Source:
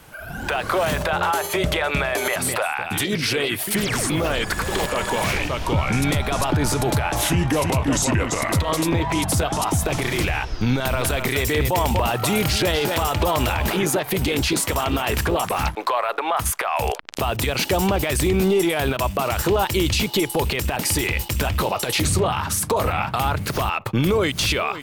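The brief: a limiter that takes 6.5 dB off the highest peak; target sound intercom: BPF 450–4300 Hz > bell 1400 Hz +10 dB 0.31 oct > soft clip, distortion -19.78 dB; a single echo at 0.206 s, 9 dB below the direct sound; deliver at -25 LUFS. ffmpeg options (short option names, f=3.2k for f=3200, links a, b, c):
-af "alimiter=limit=-17.5dB:level=0:latency=1,highpass=450,lowpass=4.3k,equalizer=f=1.4k:t=o:w=0.31:g=10,aecho=1:1:206:0.355,asoftclip=threshold=-17.5dB,volume=3dB"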